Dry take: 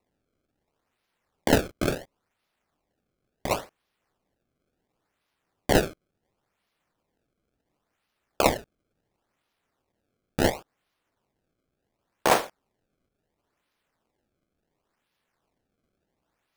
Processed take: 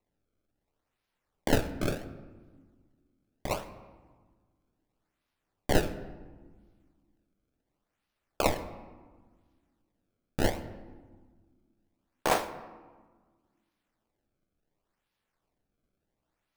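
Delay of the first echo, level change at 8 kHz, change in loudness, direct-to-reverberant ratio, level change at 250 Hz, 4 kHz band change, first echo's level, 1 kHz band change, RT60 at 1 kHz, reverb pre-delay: none, -6.0 dB, -6.0 dB, 11.0 dB, -4.5 dB, -6.0 dB, none, -5.5 dB, 1.4 s, 3 ms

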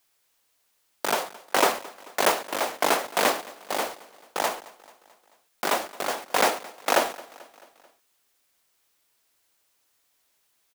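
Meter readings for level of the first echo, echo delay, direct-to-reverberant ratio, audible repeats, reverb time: -21.0 dB, 0.219 s, none, 3, none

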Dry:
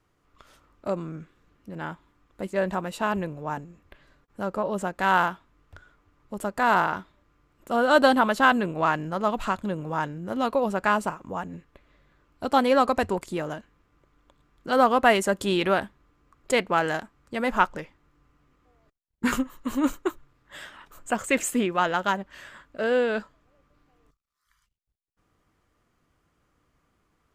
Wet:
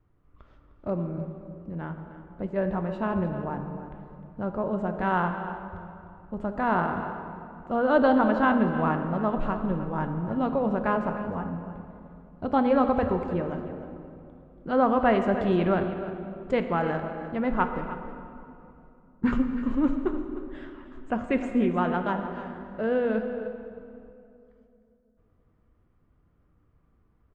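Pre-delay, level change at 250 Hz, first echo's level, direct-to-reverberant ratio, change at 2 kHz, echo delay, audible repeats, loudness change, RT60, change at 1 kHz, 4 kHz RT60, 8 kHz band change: 6 ms, +2.5 dB, -13.5 dB, 5.5 dB, -6.5 dB, 0.306 s, 1, -2.0 dB, 2.8 s, -3.5 dB, 1.7 s, under -25 dB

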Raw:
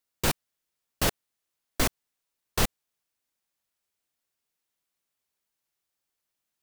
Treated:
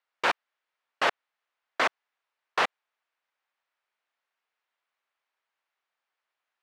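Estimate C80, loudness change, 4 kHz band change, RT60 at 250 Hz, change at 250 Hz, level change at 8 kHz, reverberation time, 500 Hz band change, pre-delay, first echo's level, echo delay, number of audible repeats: none, +0.5 dB, -1.0 dB, none, -10.0 dB, -13.5 dB, none, +1.0 dB, none, none, none, none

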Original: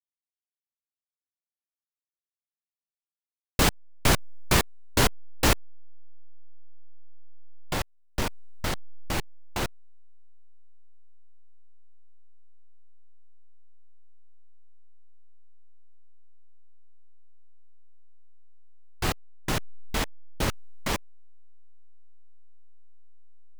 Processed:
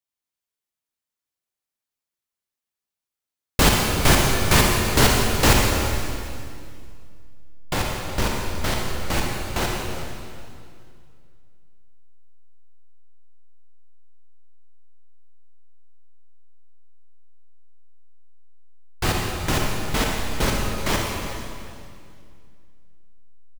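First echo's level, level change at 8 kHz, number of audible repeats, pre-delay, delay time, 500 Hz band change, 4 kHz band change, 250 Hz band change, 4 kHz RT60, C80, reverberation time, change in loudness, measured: -15.5 dB, +7.5 dB, 1, 35 ms, 0.37 s, +7.5 dB, +7.5 dB, +7.5 dB, 2.2 s, 1.5 dB, 2.3 s, +7.0 dB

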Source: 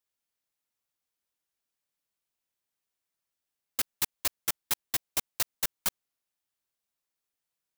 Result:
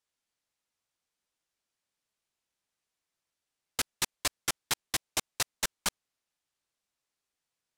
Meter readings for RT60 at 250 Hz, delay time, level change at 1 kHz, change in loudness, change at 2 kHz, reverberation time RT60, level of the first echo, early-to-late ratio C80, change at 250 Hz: none, none, +3.0 dB, -1.5 dB, +3.0 dB, none, none, none, +3.0 dB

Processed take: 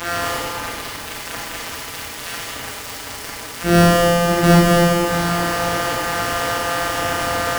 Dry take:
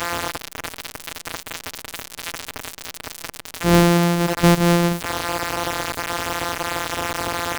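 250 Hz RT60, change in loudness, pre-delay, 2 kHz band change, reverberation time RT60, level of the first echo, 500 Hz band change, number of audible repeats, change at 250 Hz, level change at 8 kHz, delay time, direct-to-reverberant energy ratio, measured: 2.4 s, +3.0 dB, 21 ms, +4.5 dB, 2.2 s, none, +5.0 dB, none, +1.5 dB, +2.5 dB, none, -7.0 dB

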